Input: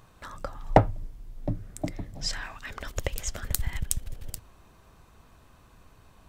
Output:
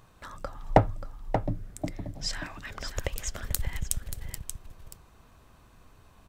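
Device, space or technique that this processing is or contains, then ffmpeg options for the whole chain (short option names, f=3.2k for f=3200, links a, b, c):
ducked delay: -filter_complex "[0:a]asplit=3[a][b][c];[b]adelay=582,volume=-8.5dB[d];[c]apad=whole_len=302925[e];[d][e]sidechaincompress=threshold=-32dB:ratio=8:attack=48:release=116[f];[a][f]amix=inputs=2:normalize=0,volume=-1.5dB"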